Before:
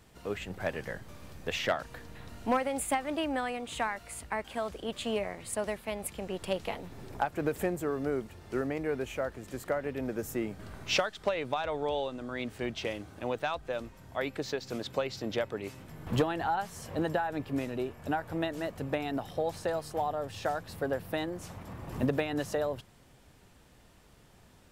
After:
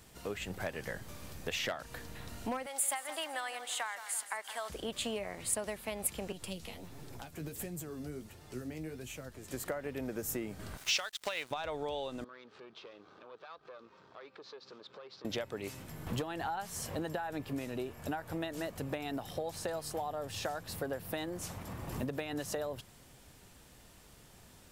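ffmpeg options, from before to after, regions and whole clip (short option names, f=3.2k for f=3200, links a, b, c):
-filter_complex "[0:a]asettb=1/sr,asplit=3[a][b][c];[a]atrim=end=2.664[d];[b]atrim=start=2.66:end=4.7,asetpts=PTS-STARTPTS,afade=t=in:d=0.004:c=qsin,afade=t=out:st=2.036:d=0.004:c=qsin,highpass=840,equalizer=f=2.5k:w=8:g=-7,aecho=1:1:167|334|501|668:0.2|0.0918|0.0422|0.0194,atrim=end_sample=89964[e];[c]atrim=start=4.696[f];[d][e]acrossfade=d=0.004:c1=hsin:c2=qsin[g];[g][f]acrossfade=d=0.004:c1=qsin:c2=hsin,asettb=1/sr,asplit=3[h][i][j];[h]atrim=end=6.324[k];[i]atrim=start=6.32:end=9.51,asetpts=PTS-STARTPTS,afade=t=in:d=0.004:c=qsin,afade=t=out:st=3.186:d=0.004:c=qsin,acrossover=split=270|3000[l][m][n];[m]acompressor=threshold=-46dB:ratio=4:attack=3.2:release=140:knee=2.83:detection=peak[o];[l][o][n]amix=inputs=3:normalize=0,flanger=delay=6.5:depth=6.4:regen=39:speed=1.4:shape=sinusoidal[p];[j]atrim=start=9.506[q];[k][p]acrossfade=d=0.004:c1=hsin:c2=qsin[r];[r][q]acrossfade=d=0.004:c1=qsin:c2=hsin,asettb=1/sr,asplit=3[s][t][u];[s]atrim=end=10.774[v];[t]atrim=start=10.77:end=11.51,asetpts=PTS-STARTPTS,afade=t=in:d=0.004:c=qsin,afade=t=out:st=0.736:d=0.004:c=qsin,tiltshelf=f=710:g=-9.5,aeval=exprs='sgn(val(0))*max(abs(val(0))-0.00398,0)':c=same[w];[u]atrim=start=11.506[x];[v][w]acrossfade=d=0.004:c1=hsin:c2=qsin[y];[y][x]acrossfade=d=0.004:c1=qsin:c2=hsin,asettb=1/sr,asplit=3[z][aa][ab];[z]atrim=end=12.244[ac];[aa]atrim=start=12.24:end=15.25,asetpts=PTS-STARTPTS,afade=t=in:d=0.004:c=qsin,afade=t=out:st=3.006:d=0.004:c=qsin,acompressor=threshold=-46dB:ratio=3:attack=3.2:release=140:knee=1:detection=peak,aeval=exprs='(tanh(126*val(0)+0.7)-tanh(0.7))/126':c=same,highpass=270,equalizer=f=270:t=q:w=4:g=-6,equalizer=f=420:t=q:w=4:g=4,equalizer=f=690:t=q:w=4:g=-4,equalizer=f=1.2k:t=q:w=4:g=7,equalizer=f=2k:t=q:w=4:g=-6,equalizer=f=2.9k:t=q:w=4:g=-4,lowpass=f=4.3k:w=0.5412,lowpass=f=4.3k:w=1.3066[ad];[ab]atrim=start=15.246[ae];[ac][ad]acrossfade=d=0.004:c1=hsin:c2=qsin[af];[af][ae]acrossfade=d=0.004:c1=qsin:c2=hsin,acompressor=threshold=-35dB:ratio=4,highshelf=f=4.3k:g=8.5"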